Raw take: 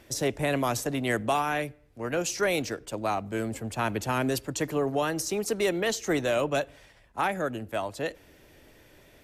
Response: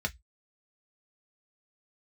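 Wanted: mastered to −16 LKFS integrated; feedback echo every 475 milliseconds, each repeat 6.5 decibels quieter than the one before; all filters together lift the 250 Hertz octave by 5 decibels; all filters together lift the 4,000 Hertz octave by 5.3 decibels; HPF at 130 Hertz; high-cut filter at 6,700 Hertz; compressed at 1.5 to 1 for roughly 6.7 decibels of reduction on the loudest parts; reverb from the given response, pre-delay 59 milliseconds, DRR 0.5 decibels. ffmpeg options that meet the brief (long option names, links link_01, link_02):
-filter_complex "[0:a]highpass=130,lowpass=6700,equalizer=frequency=250:width_type=o:gain=6.5,equalizer=frequency=4000:width_type=o:gain=7.5,acompressor=threshold=-39dB:ratio=1.5,aecho=1:1:475|950|1425|1900|2375|2850:0.473|0.222|0.105|0.0491|0.0231|0.0109,asplit=2[link_01][link_02];[1:a]atrim=start_sample=2205,adelay=59[link_03];[link_02][link_03]afir=irnorm=-1:irlink=0,volume=-6dB[link_04];[link_01][link_04]amix=inputs=2:normalize=0,volume=13.5dB"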